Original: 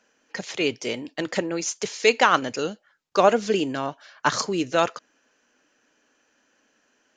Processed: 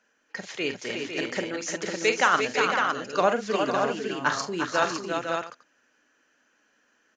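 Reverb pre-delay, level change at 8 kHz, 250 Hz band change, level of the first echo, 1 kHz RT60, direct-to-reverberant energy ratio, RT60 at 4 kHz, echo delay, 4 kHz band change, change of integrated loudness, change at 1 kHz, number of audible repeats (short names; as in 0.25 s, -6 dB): none, -3.5 dB, -3.5 dB, -9.0 dB, none, none, none, 44 ms, -2.5 dB, -2.5 dB, -1.5 dB, 5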